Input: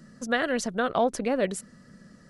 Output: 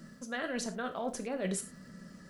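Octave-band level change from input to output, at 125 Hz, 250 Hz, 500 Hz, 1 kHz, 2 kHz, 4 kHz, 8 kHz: -3.0 dB, -7.5 dB, -11.0 dB, -11.5 dB, -9.5 dB, -8.0 dB, -3.0 dB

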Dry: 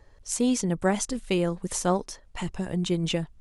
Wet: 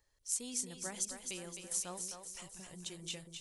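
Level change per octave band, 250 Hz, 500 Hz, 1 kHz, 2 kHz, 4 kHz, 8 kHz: -23.5 dB, -22.5 dB, -20.0 dB, -14.5 dB, -10.0 dB, -4.0 dB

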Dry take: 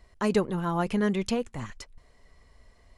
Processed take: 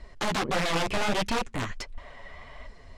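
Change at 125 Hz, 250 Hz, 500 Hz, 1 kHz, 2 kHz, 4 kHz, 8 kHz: -3.0 dB, -5.5 dB, -2.5 dB, +4.0 dB, +7.0 dB, +9.5 dB, +6.5 dB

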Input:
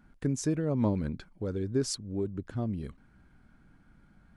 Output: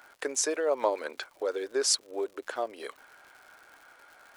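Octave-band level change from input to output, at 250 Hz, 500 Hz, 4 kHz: -11.0 dB, +5.0 dB, +10.0 dB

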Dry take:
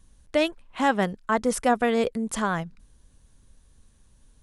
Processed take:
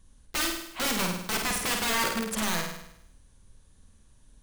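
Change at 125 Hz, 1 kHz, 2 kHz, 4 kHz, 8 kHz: -3.0 dB, -6.5 dB, -0.5 dB, +6.5 dB, +6.5 dB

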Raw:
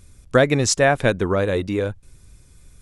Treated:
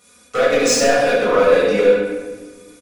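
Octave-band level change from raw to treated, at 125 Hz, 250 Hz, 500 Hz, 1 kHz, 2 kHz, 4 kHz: -11.5 dB, +0.5 dB, +6.5 dB, +4.5 dB, +2.5 dB, +4.5 dB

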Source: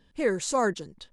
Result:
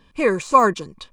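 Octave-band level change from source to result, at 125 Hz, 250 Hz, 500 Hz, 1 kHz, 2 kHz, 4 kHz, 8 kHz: +6.5 dB, +6.5 dB, +6.5 dB, +14.0 dB, +7.5 dB, +2.5 dB, -2.0 dB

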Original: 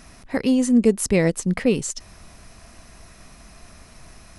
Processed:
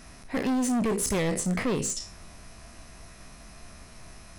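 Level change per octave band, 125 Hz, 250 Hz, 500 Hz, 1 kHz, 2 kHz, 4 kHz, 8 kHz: -6.0 dB, -8.0 dB, -8.5 dB, +2.5 dB, -4.5 dB, -2.5 dB, -2.0 dB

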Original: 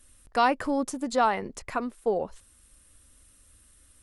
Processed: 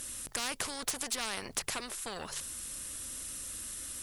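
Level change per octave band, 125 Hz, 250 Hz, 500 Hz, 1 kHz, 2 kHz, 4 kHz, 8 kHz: -4.5 dB, -16.0 dB, -16.5 dB, -16.5 dB, -5.5 dB, +4.0 dB, +10.0 dB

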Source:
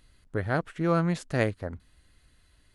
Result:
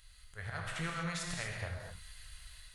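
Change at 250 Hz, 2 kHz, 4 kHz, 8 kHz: -15.5 dB, -5.0 dB, +2.0 dB, +5.0 dB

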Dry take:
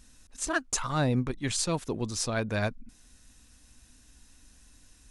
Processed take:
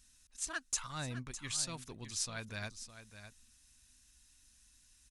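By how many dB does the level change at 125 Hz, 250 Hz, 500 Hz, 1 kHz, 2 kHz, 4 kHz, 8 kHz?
-14.0 dB, -17.0 dB, -18.5 dB, -13.0 dB, -9.5 dB, -5.5 dB, -4.5 dB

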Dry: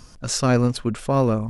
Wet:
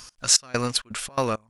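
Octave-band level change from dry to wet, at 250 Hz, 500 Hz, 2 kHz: -11.0 dB, -7.0 dB, 0.0 dB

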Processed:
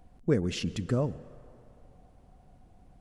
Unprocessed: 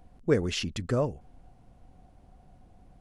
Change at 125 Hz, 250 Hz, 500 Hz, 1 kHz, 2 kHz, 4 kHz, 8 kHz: +1.0 dB, +1.0 dB, -3.0 dB, -4.5 dB, -4.5 dB, -4.5 dB, -3.5 dB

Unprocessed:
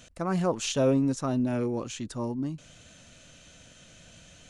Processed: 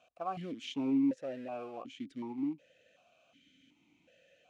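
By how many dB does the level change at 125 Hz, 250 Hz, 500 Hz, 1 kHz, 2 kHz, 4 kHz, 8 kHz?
-19.5 dB, -5.5 dB, -13.0 dB, -6.5 dB, -11.5 dB, -10.0 dB, under -20 dB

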